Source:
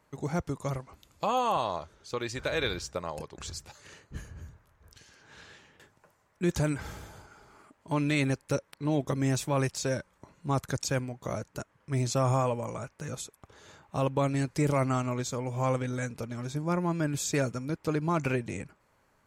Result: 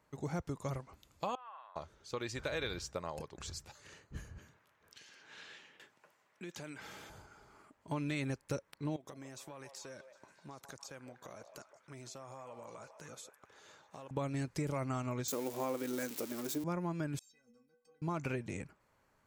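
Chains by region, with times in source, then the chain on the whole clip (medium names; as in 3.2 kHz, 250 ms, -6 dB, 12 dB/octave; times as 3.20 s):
1.35–1.76 s: ladder band-pass 1.8 kHz, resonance 40% + distance through air 460 m
4.38–7.10 s: high-pass 210 Hz + peaking EQ 2.8 kHz +7 dB 1.6 oct + compression 3:1, threshold -41 dBFS
8.96–14.11 s: high-pass 420 Hz 6 dB/octave + compression, threshold -41 dBFS + repeats whose band climbs or falls 152 ms, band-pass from 700 Hz, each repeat 0.7 oct, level -6 dB
15.28–16.64 s: zero-crossing glitches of -26.5 dBFS + resonant high-pass 310 Hz, resonance Q 2.9
17.19–18.02 s: peaking EQ 69 Hz -14 dB 0.7 oct + level held to a coarse grid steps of 23 dB + inharmonic resonator 230 Hz, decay 0.42 s, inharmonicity 0.03
whole clip: peaking EQ 9.5 kHz -2.5 dB 0.27 oct; compression, threshold -28 dBFS; trim -5 dB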